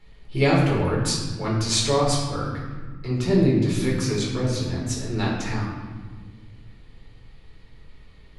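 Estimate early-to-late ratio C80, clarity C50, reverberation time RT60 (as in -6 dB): 4.0 dB, 1.5 dB, 1.4 s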